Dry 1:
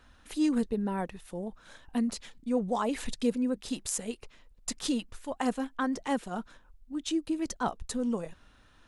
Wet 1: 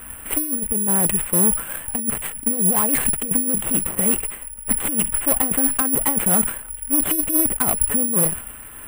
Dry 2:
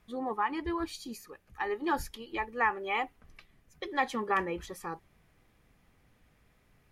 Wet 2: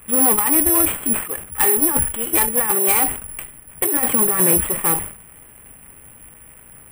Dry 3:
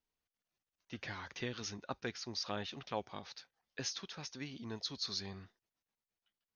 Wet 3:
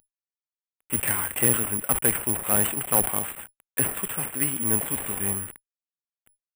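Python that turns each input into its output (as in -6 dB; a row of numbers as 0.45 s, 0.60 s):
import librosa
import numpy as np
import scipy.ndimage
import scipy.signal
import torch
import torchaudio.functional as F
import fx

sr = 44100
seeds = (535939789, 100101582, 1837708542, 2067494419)

y = fx.cvsd(x, sr, bps=16000)
y = fx.dynamic_eq(y, sr, hz=150.0, q=0.87, threshold_db=-45.0, ratio=4.0, max_db=6)
y = fx.over_compress(y, sr, threshold_db=-32.0, ratio=-0.5)
y = fx.tube_stage(y, sr, drive_db=32.0, bias=0.5)
y = (np.kron(y[::4], np.eye(4)[0]) * 4)[:len(y)]
y = fx.sustainer(y, sr, db_per_s=110.0)
y = y * 10.0 ** (-1.5 / 20.0) / np.max(np.abs(y))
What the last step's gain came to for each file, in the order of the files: +13.0 dB, +15.5 dB, +15.0 dB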